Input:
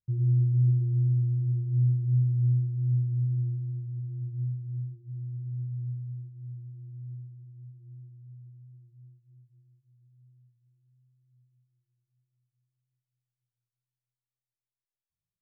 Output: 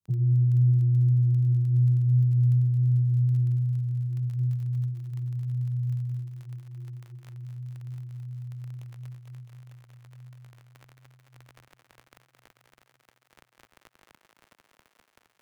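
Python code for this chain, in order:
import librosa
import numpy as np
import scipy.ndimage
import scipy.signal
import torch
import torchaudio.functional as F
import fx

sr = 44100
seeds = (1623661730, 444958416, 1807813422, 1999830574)

y = fx.highpass(x, sr, hz=110.0, slope=6)
y = fx.low_shelf(y, sr, hz=290.0, db=10.0)
y = fx.env_flanger(y, sr, rest_ms=10.8, full_db=-20.5)
y = fx.fixed_phaser(y, sr, hz=340.0, stages=8)
y = fx.dmg_crackle(y, sr, seeds[0], per_s=15.0, level_db=-35.0)
y = fx.echo_thinned(y, sr, ms=220, feedback_pct=81, hz=180.0, wet_db=-8)
y = fx.band_squash(y, sr, depth_pct=40)
y = y * librosa.db_to_amplitude(-3.5)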